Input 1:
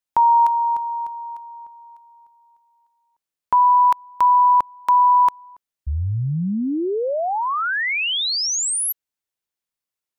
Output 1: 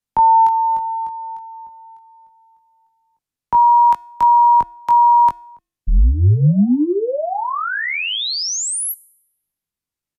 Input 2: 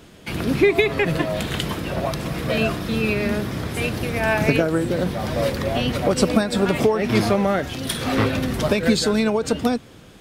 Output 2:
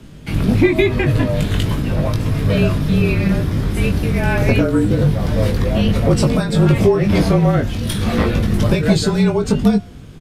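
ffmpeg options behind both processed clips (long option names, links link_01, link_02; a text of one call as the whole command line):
ffmpeg -i in.wav -filter_complex "[0:a]bandreject=frequency=369.5:width_type=h:width=4,bandreject=frequency=739:width_type=h:width=4,bandreject=frequency=1108.5:width_type=h:width=4,bandreject=frequency=1478:width_type=h:width=4,bandreject=frequency=1847.5:width_type=h:width=4,bandreject=frequency=2217:width_type=h:width=4,bandreject=frequency=2586.5:width_type=h:width=4,bandreject=frequency=2956:width_type=h:width=4,bandreject=frequency=3325.5:width_type=h:width=4,bandreject=frequency=3695:width_type=h:width=4,bandreject=frequency=4064.5:width_type=h:width=4,bandreject=frequency=4434:width_type=h:width=4,bandreject=frequency=4803.5:width_type=h:width=4,bandreject=frequency=5173:width_type=h:width=4,bandreject=frequency=5542.5:width_type=h:width=4,bandreject=frequency=5912:width_type=h:width=4,bandreject=frequency=6281.5:width_type=h:width=4,bandreject=frequency=6651:width_type=h:width=4,bandreject=frequency=7020.5:width_type=h:width=4,bandreject=frequency=7390:width_type=h:width=4,bandreject=frequency=7759.5:width_type=h:width=4,bandreject=frequency=8129:width_type=h:width=4,bandreject=frequency=8498.5:width_type=h:width=4,bandreject=frequency=8868:width_type=h:width=4,bandreject=frequency=9237.5:width_type=h:width=4,bandreject=frequency=9607:width_type=h:width=4,bandreject=frequency=9976.5:width_type=h:width=4,bandreject=frequency=10346:width_type=h:width=4,bandreject=frequency=10715.5:width_type=h:width=4,bandreject=frequency=11085:width_type=h:width=4,bandreject=frequency=11454.5:width_type=h:width=4,bandreject=frequency=11824:width_type=h:width=4,bandreject=frequency=12193.5:width_type=h:width=4,bandreject=frequency=12563:width_type=h:width=4,bandreject=frequency=12932.5:width_type=h:width=4,bandreject=frequency=13302:width_type=h:width=4,acrossover=split=290[link_01][link_02];[link_01]aeval=exprs='0.316*sin(PI/2*2.51*val(0)/0.316)':channel_layout=same[link_03];[link_03][link_02]amix=inputs=2:normalize=0,afreqshift=-35,asplit=2[link_04][link_05];[link_05]adelay=20,volume=-5dB[link_06];[link_04][link_06]amix=inputs=2:normalize=0,aresample=32000,aresample=44100,volume=-1dB" out.wav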